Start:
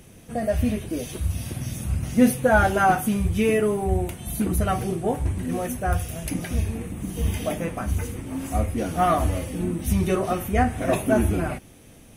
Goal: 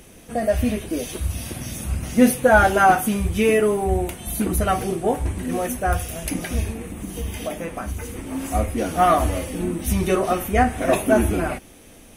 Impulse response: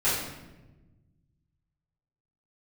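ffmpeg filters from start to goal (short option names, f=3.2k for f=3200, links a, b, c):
-filter_complex "[0:a]equalizer=f=120:w=1.1:g=-9.5,asplit=3[a][b][c];[a]afade=t=out:st=6.72:d=0.02[d];[b]acompressor=threshold=-33dB:ratio=2,afade=t=in:st=6.72:d=0.02,afade=t=out:st=8.15:d=0.02[e];[c]afade=t=in:st=8.15:d=0.02[f];[d][e][f]amix=inputs=3:normalize=0,volume=4.5dB"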